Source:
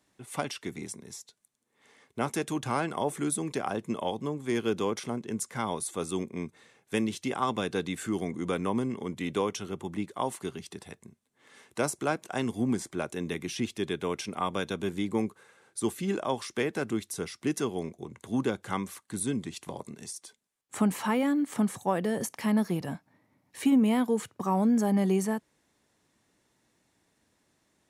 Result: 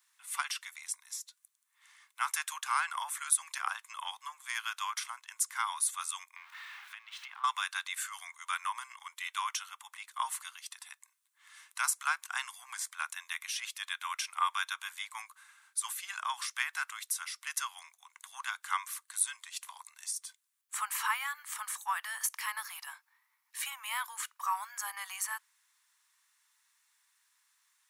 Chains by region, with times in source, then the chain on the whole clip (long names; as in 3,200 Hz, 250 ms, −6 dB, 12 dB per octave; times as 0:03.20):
0:06.36–0:07.44: converter with a step at zero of −39 dBFS + three-way crossover with the lows and the highs turned down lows −14 dB, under 400 Hz, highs −23 dB, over 3,600 Hz + downward compressor 16 to 1, threshold −39 dBFS
whole clip: dynamic equaliser 1,400 Hz, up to +4 dB, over −42 dBFS, Q 1; Butterworth high-pass 990 Hz 48 dB per octave; high-shelf EQ 11,000 Hz +12 dB